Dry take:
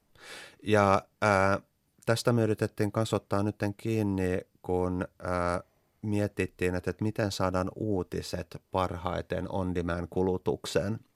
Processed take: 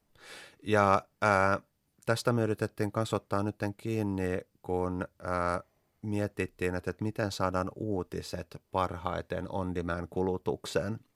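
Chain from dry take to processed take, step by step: dynamic EQ 1200 Hz, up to +4 dB, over -39 dBFS, Q 1.1; gain -3 dB

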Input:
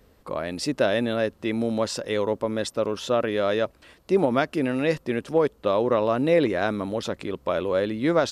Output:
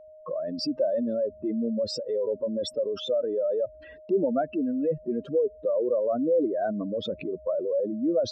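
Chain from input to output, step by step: spectral contrast raised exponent 3; in parallel at 0 dB: compressor, threshold -33 dBFS, peak gain reduction 15.5 dB; on the sum: gate -48 dBFS, range -28 dB; whine 620 Hz -42 dBFS; gain -4.5 dB

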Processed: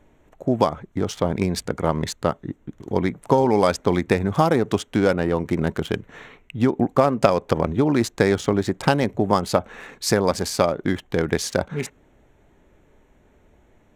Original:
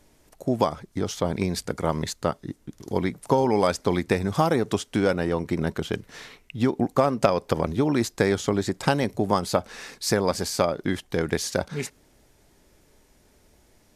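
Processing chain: Wiener smoothing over 9 samples; 5.35–5.95 high shelf 4500 Hz +5.5 dB; gain +3.5 dB

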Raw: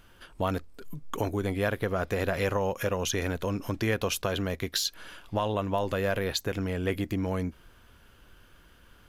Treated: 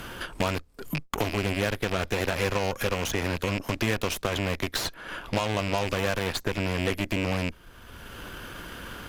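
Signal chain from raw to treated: rattling part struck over -36 dBFS, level -24 dBFS; added harmonics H 2 -17 dB, 8 -15 dB, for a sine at -14.5 dBFS; three-band squash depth 70%

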